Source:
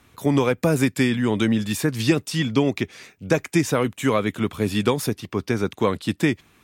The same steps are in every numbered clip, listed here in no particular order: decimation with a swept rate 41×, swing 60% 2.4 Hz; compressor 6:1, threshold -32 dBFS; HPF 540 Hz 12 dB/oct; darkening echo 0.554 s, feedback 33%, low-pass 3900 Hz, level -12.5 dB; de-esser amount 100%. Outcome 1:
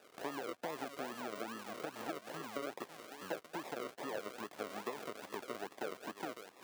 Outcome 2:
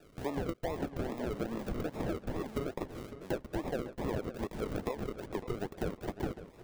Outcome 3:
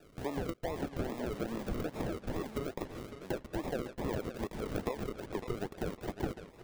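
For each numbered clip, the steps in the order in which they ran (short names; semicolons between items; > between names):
compressor > darkening echo > decimation with a swept rate > HPF > de-esser; HPF > decimation with a swept rate > de-esser > compressor > darkening echo; HPF > compressor > decimation with a swept rate > darkening echo > de-esser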